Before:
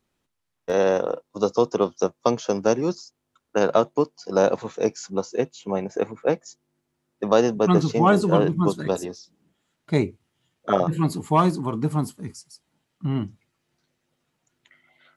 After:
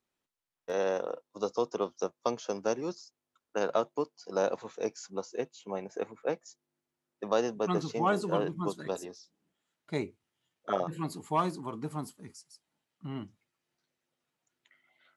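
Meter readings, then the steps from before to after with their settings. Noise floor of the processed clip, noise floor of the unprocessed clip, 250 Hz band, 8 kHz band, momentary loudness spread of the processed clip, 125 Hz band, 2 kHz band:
below −85 dBFS, −77 dBFS, −13.0 dB, −8.5 dB, 12 LU, −15.0 dB, −8.5 dB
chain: low-shelf EQ 210 Hz −10.5 dB
level −8.5 dB

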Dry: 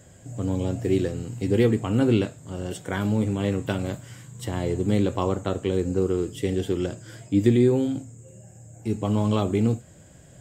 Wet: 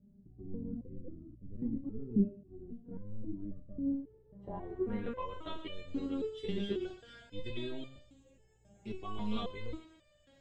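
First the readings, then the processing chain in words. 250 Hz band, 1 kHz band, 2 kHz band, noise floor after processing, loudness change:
−13.5 dB, −12.5 dB, −15.5 dB, −66 dBFS, −15.0 dB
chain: sub-octave generator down 1 octave, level −3 dB
feedback echo with a high-pass in the loop 120 ms, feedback 46%, high-pass 650 Hz, level −11 dB
low-pass filter sweep 230 Hz → 3,600 Hz, 0:03.83–0:05.47
step-sequenced resonator 3.7 Hz 200–600 Hz
level +1.5 dB

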